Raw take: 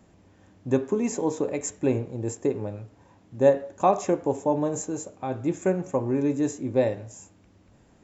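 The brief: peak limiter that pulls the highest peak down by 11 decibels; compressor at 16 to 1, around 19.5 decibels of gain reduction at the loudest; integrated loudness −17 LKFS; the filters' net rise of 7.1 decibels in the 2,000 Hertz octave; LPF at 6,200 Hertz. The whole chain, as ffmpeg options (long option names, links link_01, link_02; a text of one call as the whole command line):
ffmpeg -i in.wav -af "lowpass=6200,equalizer=frequency=2000:width_type=o:gain=9,acompressor=threshold=-32dB:ratio=16,volume=24dB,alimiter=limit=-6dB:level=0:latency=1" out.wav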